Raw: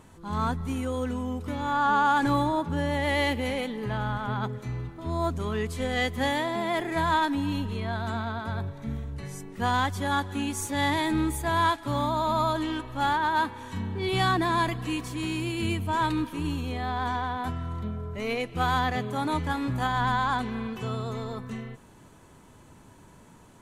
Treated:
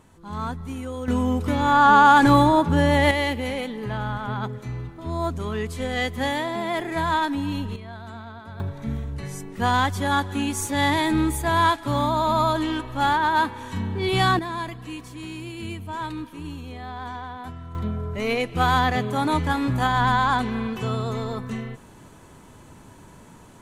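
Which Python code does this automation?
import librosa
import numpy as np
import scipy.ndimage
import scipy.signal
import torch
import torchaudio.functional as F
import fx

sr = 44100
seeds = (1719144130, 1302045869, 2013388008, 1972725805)

y = fx.gain(x, sr, db=fx.steps((0.0, -2.0), (1.08, 9.0), (3.11, 1.5), (7.76, -7.5), (8.6, 4.5), (14.39, -5.0), (17.75, 5.5)))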